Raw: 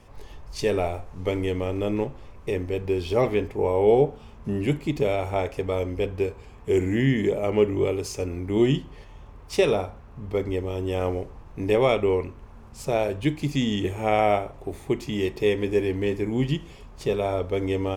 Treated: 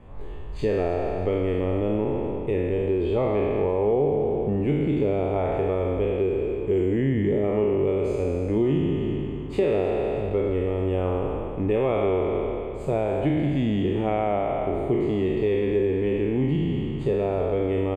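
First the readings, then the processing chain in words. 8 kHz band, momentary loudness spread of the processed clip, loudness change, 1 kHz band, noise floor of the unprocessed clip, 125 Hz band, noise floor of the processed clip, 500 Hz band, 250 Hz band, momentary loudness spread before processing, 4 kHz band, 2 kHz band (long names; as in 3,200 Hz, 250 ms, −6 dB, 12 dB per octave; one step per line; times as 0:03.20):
below −15 dB, 4 LU, +1.0 dB, −1.0 dB, −46 dBFS, +2.0 dB, −32 dBFS, +1.0 dB, +2.0 dB, 10 LU, −8.0 dB, −4.5 dB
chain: peak hold with a decay on every bin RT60 2.08 s
tilt shelving filter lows +3.5 dB, about 810 Hz
downward compressor 3 to 1, threshold −21 dBFS, peak gain reduction 8.5 dB
moving average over 8 samples
repeating echo 312 ms, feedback 56%, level −17 dB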